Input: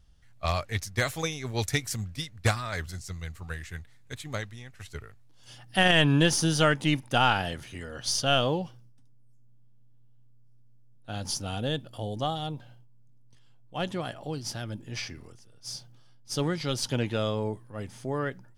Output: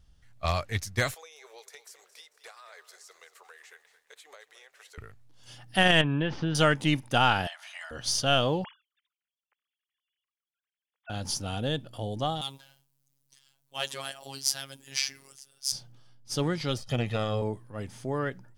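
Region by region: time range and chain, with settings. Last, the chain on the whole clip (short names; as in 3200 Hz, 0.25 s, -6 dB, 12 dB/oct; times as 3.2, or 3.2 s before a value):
1.14–4.98 elliptic high-pass 430 Hz, stop band 50 dB + compressor 4:1, threshold -49 dBFS + lo-fi delay 0.222 s, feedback 55%, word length 11-bit, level -14 dB
6.01–6.55 LPF 2900 Hz 24 dB/oct + compressor 4:1, threshold -24 dBFS
7.47–7.91 brick-wall FIR high-pass 600 Hz + high shelf 5600 Hz -9 dB + three-band squash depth 100%
8.64–11.1 sine-wave speech + HPF 1100 Hz
12.41–15.72 tilt +4.5 dB/oct + robotiser 136 Hz
16.77–17.42 de-esser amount 90% + comb 1.6 ms, depth 85% + core saturation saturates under 290 Hz
whole clip: dry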